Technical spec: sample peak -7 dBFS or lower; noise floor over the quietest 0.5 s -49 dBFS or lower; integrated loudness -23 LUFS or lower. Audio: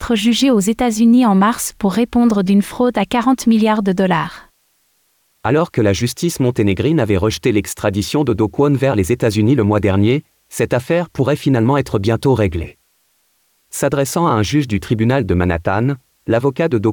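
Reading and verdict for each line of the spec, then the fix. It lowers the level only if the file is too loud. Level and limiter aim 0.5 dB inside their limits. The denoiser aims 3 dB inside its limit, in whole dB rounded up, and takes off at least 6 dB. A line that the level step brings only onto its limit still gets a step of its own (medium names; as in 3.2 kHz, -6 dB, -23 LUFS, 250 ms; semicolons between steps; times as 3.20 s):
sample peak -4.5 dBFS: fail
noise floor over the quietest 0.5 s -61 dBFS: pass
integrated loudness -15.5 LUFS: fail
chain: trim -8 dB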